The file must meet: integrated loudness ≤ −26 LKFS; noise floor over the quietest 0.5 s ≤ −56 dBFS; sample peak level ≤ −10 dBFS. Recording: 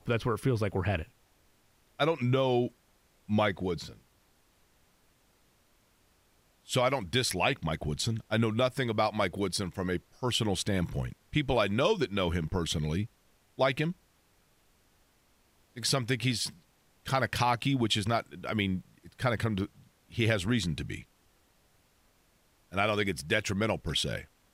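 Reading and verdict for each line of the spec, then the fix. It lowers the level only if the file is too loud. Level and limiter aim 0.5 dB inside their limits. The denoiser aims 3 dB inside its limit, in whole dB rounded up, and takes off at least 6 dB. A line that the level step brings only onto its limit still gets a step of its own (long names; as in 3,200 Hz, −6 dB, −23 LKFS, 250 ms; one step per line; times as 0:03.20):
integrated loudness −30.5 LKFS: in spec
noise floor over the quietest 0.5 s −67 dBFS: in spec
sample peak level −13.0 dBFS: in spec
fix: no processing needed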